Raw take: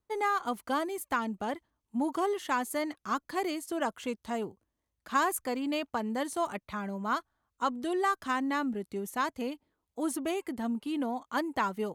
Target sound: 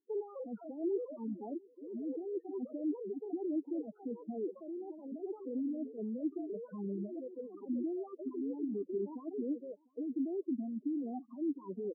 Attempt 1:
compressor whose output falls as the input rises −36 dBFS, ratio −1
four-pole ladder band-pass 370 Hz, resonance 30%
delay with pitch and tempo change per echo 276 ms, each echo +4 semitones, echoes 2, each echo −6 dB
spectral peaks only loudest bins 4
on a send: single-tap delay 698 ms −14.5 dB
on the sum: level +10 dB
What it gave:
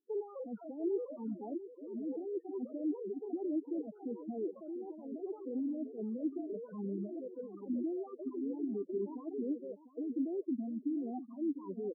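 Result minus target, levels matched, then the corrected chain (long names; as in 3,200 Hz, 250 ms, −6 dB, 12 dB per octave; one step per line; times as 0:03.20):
echo-to-direct +12 dB
compressor whose output falls as the input rises −36 dBFS, ratio −1
four-pole ladder band-pass 370 Hz, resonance 30%
delay with pitch and tempo change per echo 276 ms, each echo +4 semitones, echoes 2, each echo −6 dB
spectral peaks only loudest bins 4
on a send: single-tap delay 698 ms −26.5 dB
on the sum: level +10 dB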